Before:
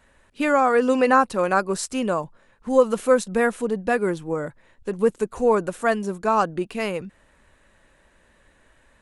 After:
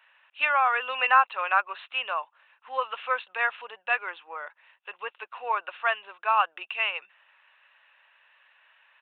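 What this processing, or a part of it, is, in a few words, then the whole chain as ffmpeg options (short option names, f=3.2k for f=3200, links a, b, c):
musical greeting card: -af "aresample=8000,aresample=44100,highpass=f=860:w=0.5412,highpass=f=860:w=1.3066,equalizer=f=2.7k:t=o:w=0.23:g=11"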